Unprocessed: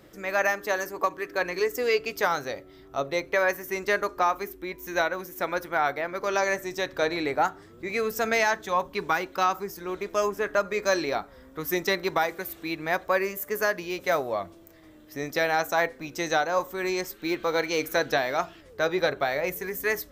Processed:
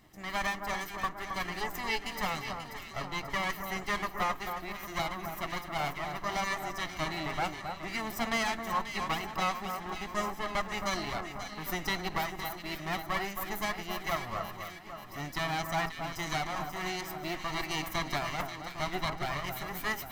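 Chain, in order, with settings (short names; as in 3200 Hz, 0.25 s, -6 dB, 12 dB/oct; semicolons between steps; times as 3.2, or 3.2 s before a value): minimum comb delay 0.99 ms; bell 910 Hz -4.5 dB 0.2 oct; on a send: echo with dull and thin repeats by turns 0.268 s, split 1600 Hz, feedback 74%, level -6 dB; on the sum: gain -5 dB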